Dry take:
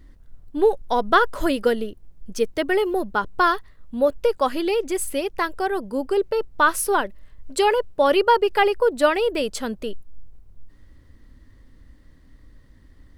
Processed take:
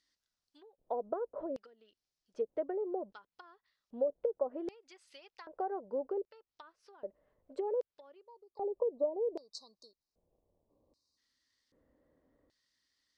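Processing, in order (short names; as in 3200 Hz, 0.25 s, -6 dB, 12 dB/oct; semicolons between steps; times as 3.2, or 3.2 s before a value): treble ducked by the level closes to 600 Hz, closed at -16 dBFS; 4.88–5.79 dynamic EQ 880 Hz, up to +6 dB, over -37 dBFS, Q 0.79; 8.23–11.18 spectral delete 1200–3700 Hz; compressor 4:1, threshold -25 dBFS, peak gain reduction 10 dB; LFO band-pass square 0.64 Hz 560–5100 Hz; gain -3 dB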